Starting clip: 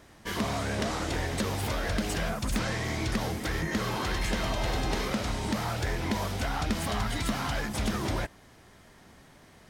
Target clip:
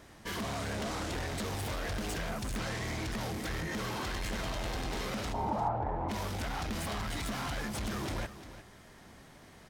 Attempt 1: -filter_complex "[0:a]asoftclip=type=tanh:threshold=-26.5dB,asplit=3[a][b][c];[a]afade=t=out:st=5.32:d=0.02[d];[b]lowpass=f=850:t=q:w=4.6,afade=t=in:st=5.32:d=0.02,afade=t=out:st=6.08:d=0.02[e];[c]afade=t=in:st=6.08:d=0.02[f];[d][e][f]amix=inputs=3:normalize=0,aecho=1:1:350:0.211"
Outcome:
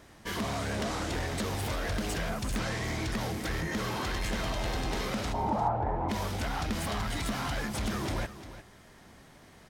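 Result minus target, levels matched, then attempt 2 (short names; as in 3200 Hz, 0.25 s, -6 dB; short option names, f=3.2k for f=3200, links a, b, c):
soft clip: distortion -6 dB
-filter_complex "[0:a]asoftclip=type=tanh:threshold=-33dB,asplit=3[a][b][c];[a]afade=t=out:st=5.32:d=0.02[d];[b]lowpass=f=850:t=q:w=4.6,afade=t=in:st=5.32:d=0.02,afade=t=out:st=6.08:d=0.02[e];[c]afade=t=in:st=6.08:d=0.02[f];[d][e][f]amix=inputs=3:normalize=0,aecho=1:1:350:0.211"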